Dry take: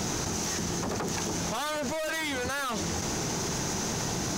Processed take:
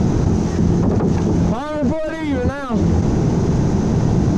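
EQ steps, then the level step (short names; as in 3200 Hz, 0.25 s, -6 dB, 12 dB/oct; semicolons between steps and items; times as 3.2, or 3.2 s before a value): air absorption 61 m; tilt shelf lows +7.5 dB, about 1200 Hz; low shelf 350 Hz +10.5 dB; +3.5 dB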